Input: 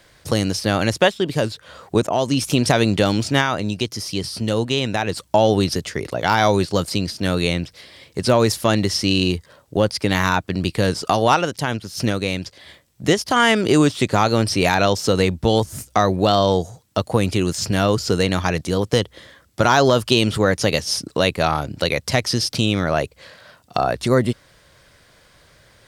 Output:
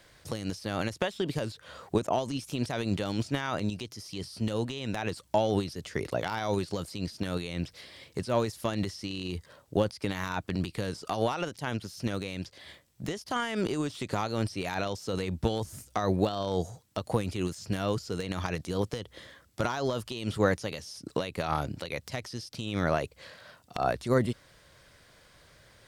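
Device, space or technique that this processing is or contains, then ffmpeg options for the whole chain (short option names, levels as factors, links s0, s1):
de-esser from a sidechain: -filter_complex "[0:a]asplit=2[s0][s1];[s1]highpass=f=4100:w=0.5412,highpass=f=4100:w=1.3066,apad=whole_len=1141176[s2];[s0][s2]sidechaincompress=threshold=0.0126:ratio=4:attack=0.96:release=70,volume=0.531"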